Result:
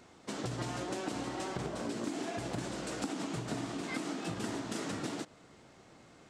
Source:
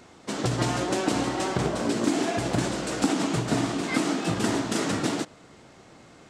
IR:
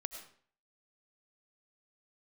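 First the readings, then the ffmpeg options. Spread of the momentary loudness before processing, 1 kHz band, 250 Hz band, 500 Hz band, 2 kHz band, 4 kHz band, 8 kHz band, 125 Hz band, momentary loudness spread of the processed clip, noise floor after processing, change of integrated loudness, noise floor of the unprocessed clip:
4 LU, −11.5 dB, −12.0 dB, −11.5 dB, −11.0 dB, −11.5 dB, −11.5 dB, −12.0 dB, 13 LU, −59 dBFS, −11.5 dB, −52 dBFS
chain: -af "acompressor=threshold=-29dB:ratio=2.5,volume=-7dB"

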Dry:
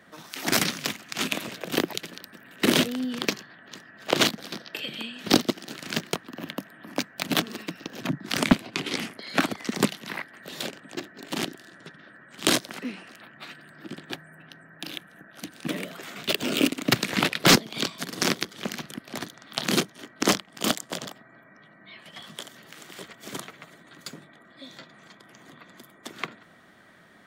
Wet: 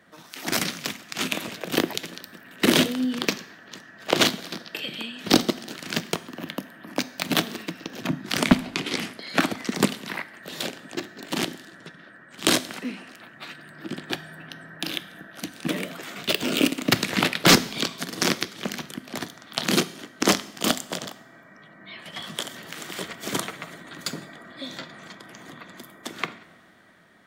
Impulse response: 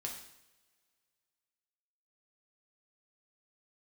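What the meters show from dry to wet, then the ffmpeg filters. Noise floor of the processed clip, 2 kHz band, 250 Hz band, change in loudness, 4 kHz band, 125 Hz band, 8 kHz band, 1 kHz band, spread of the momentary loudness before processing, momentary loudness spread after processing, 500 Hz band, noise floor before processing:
−50 dBFS, +2.0 dB, +2.0 dB, +1.5 dB, +2.0 dB, +1.5 dB, +1.5 dB, +2.0 dB, 20 LU, 20 LU, +2.0 dB, −54 dBFS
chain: -filter_complex "[0:a]dynaudnorm=framelen=260:gausssize=9:maxgain=11.5dB,asplit=2[link_01][link_02];[1:a]atrim=start_sample=2205[link_03];[link_02][link_03]afir=irnorm=-1:irlink=0,volume=-8dB[link_04];[link_01][link_04]amix=inputs=2:normalize=0,volume=-4.5dB"

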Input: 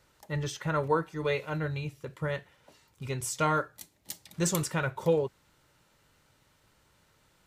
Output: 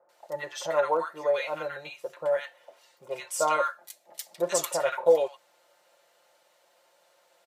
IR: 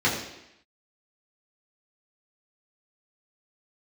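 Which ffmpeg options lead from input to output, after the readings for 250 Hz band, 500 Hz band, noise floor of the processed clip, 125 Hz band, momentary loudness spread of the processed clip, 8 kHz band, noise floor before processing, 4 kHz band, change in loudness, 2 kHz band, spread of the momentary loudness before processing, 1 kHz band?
−9.5 dB, +5.5 dB, −66 dBFS, −20.5 dB, 17 LU, +2.0 dB, −67 dBFS, +1.5 dB, +3.0 dB, +0.5 dB, 14 LU, +3.5 dB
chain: -filter_complex "[0:a]highpass=frequency=620:width_type=q:width=4.1,aecho=1:1:5.7:0.65,acrossover=split=1200[link_01][link_02];[link_02]adelay=90[link_03];[link_01][link_03]amix=inputs=2:normalize=0"

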